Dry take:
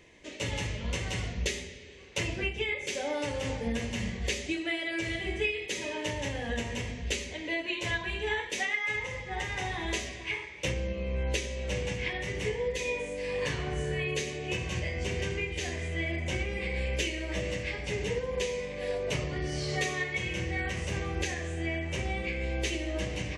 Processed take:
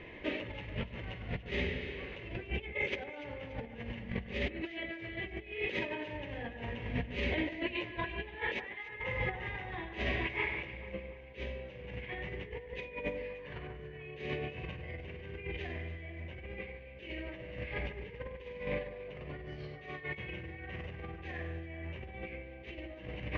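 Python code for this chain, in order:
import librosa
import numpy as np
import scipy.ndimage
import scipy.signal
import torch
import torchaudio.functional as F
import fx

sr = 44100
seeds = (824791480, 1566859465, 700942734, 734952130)

y = scipy.signal.sosfilt(scipy.signal.butter(4, 2900.0, 'lowpass', fs=sr, output='sos'), x)
y = fx.over_compress(y, sr, threshold_db=-40.0, ratio=-0.5)
y = fx.echo_alternate(y, sr, ms=145, hz=2000.0, feedback_pct=69, wet_db=-11)
y = y * 10.0 ** (1.0 / 20.0)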